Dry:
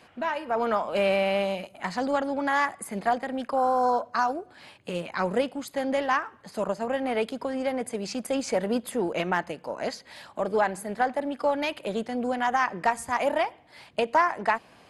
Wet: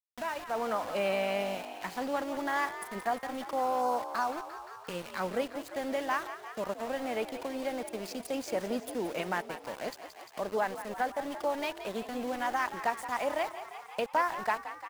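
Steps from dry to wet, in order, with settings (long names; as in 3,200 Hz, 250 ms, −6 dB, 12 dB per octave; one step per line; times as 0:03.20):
high-pass filter 110 Hz 6 dB per octave
centre clipping without the shift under −34.5 dBFS
echo with shifted repeats 174 ms, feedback 63%, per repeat +51 Hz, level −12 dB
one half of a high-frequency compander encoder only
level −6.5 dB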